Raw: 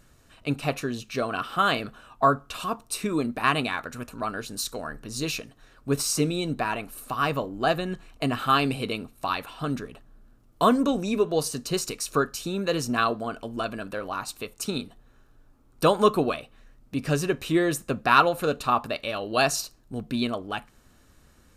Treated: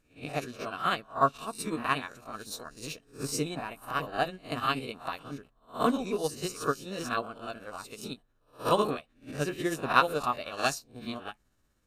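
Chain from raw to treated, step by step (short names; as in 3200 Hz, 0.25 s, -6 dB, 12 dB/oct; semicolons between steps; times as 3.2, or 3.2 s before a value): spectral swells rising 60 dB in 0.72 s; granular stretch 0.55×, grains 0.124 s; upward expander 1.5:1, over -41 dBFS; gain -3 dB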